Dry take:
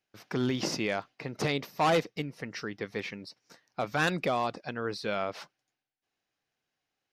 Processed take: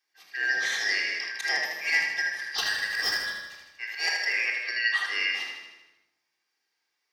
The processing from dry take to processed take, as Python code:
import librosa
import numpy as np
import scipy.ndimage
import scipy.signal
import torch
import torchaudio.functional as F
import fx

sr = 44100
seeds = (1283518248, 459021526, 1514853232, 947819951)

y = fx.band_shuffle(x, sr, order='3142')
y = scipy.signal.sosfilt(scipy.signal.butter(2, 420.0, 'highpass', fs=sr, output='sos'), y)
y = fx.auto_swell(y, sr, attack_ms=119.0)
y = fx.leveller(y, sr, passes=3, at=(2.58, 3.2))
y = fx.rider(y, sr, range_db=5, speed_s=0.5)
y = fx.echo_feedback(y, sr, ms=78, feedback_pct=59, wet_db=-6.0)
y = fx.room_shoebox(y, sr, seeds[0], volume_m3=2500.0, walls='furnished', distance_m=3.7)
y = fx.sustainer(y, sr, db_per_s=25.0, at=(0.68, 1.38))